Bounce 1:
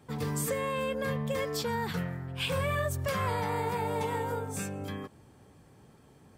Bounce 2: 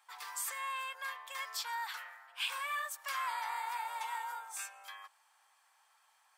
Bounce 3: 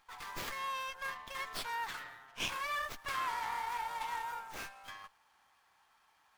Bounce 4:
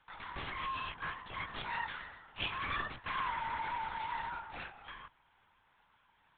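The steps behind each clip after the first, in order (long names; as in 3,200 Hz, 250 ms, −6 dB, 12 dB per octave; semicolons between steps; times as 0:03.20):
Butterworth high-pass 850 Hz 36 dB per octave; level −2.5 dB
windowed peak hold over 5 samples; level +1 dB
linear-prediction vocoder at 8 kHz whisper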